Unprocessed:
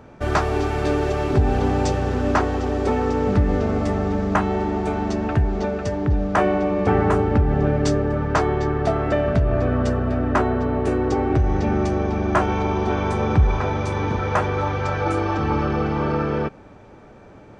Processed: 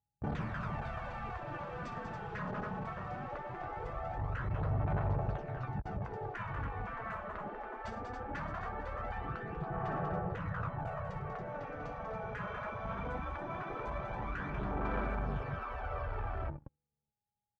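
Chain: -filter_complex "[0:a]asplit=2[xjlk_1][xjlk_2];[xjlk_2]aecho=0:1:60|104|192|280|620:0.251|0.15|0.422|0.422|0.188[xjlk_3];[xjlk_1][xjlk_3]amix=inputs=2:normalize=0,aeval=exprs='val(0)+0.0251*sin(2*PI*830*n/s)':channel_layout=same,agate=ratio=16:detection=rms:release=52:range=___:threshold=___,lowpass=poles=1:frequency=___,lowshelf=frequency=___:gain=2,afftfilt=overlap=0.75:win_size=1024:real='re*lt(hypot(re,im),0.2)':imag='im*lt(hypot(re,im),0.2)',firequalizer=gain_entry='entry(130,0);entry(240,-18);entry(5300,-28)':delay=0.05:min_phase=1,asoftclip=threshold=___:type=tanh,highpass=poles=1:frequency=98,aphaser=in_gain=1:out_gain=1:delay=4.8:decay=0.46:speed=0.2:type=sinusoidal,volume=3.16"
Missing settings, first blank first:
0.00178, 0.0794, 1300, 170, 0.0141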